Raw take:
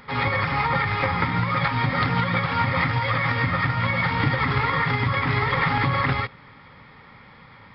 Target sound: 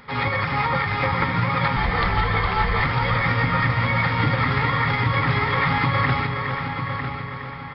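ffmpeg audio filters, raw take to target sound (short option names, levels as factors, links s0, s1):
-filter_complex "[0:a]asplit=2[s0][s1];[s1]adelay=951,lowpass=f=3700:p=1,volume=0.422,asplit=2[s2][s3];[s3]adelay=951,lowpass=f=3700:p=1,volume=0.39,asplit=2[s4][s5];[s5]adelay=951,lowpass=f=3700:p=1,volume=0.39,asplit=2[s6][s7];[s7]adelay=951,lowpass=f=3700:p=1,volume=0.39[s8];[s2][s4][s6][s8]amix=inputs=4:normalize=0[s9];[s0][s9]amix=inputs=2:normalize=0,asettb=1/sr,asplit=3[s10][s11][s12];[s10]atrim=end=1.764[s13];[s11]atrim=start=1.76:end=2.83,asetpts=PTS-STARTPTS,afade=t=in:d=0.004:c=qsin,afade=t=out:st=1.066:d=0.004:c=qsin,afreqshift=-72[s14];[s12]atrim=start=2.826[s15];[s13][s14]acrossfade=d=0.004:c1=hsin:c2=qsin[s16];[s16][s15]acrossfade=d=0.004:c1=qsin:c2=hsin,asplit=2[s17][s18];[s18]aecho=0:1:414|828|1242|1656|2070|2484|2898:0.355|0.209|0.124|0.0729|0.043|0.0254|0.015[s19];[s17][s19]amix=inputs=2:normalize=0"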